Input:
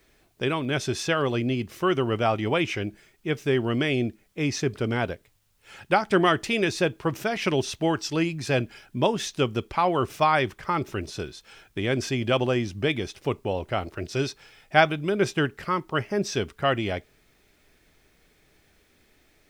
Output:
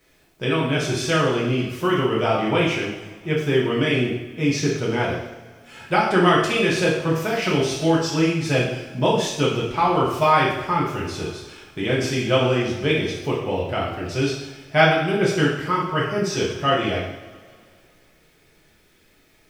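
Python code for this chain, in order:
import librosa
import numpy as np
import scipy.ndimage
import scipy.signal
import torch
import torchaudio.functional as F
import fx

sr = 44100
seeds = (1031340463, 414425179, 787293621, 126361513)

y = fx.rev_double_slope(x, sr, seeds[0], early_s=0.76, late_s=2.5, knee_db=-18, drr_db=-5.5)
y = y * 10.0 ** (-2.0 / 20.0)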